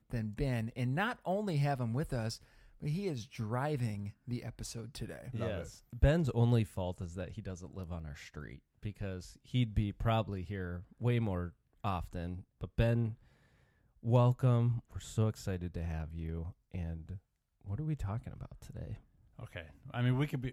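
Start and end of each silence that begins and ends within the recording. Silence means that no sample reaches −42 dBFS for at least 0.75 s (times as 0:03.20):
0:13.13–0:14.05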